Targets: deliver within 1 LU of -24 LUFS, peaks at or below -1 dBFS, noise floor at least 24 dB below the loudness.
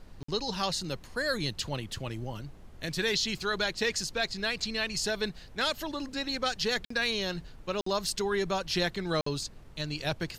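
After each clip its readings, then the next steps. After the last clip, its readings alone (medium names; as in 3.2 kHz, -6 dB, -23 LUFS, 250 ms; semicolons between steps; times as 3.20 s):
dropouts 4; longest dropout 54 ms; noise floor -50 dBFS; noise floor target -56 dBFS; loudness -31.5 LUFS; peak level -15.5 dBFS; loudness target -24.0 LUFS
-> interpolate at 0.23/6.85/7.81/9.21 s, 54 ms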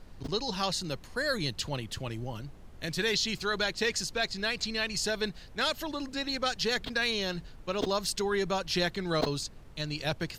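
dropouts 0; noise floor -50 dBFS; noise floor target -56 dBFS
-> noise print and reduce 6 dB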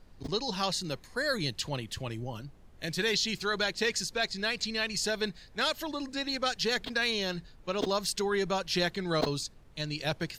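noise floor -55 dBFS; noise floor target -56 dBFS
-> noise print and reduce 6 dB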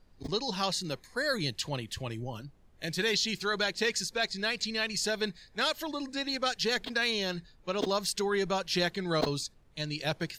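noise floor -60 dBFS; loudness -31.5 LUFS; peak level -15.5 dBFS; loudness target -24.0 LUFS
-> trim +7.5 dB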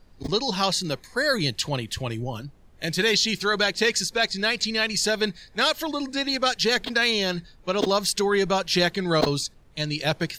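loudness -24.0 LUFS; peak level -8.0 dBFS; noise floor -53 dBFS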